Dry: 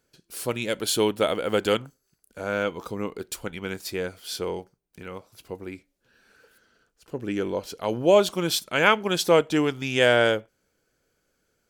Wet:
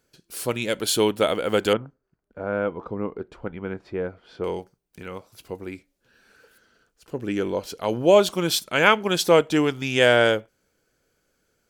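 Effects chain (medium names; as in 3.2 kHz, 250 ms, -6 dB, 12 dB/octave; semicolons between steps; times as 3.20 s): 1.73–4.44 s: low-pass 1.3 kHz 12 dB/octave; trim +2 dB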